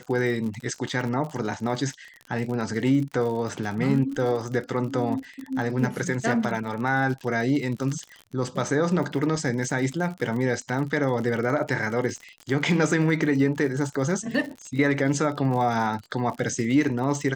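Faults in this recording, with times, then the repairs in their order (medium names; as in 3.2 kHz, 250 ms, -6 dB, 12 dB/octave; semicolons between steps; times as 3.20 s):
crackle 52 per s -32 dBFS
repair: de-click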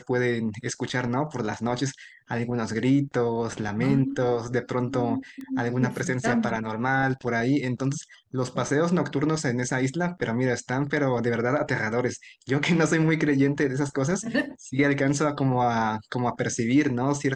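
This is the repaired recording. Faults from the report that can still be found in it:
nothing left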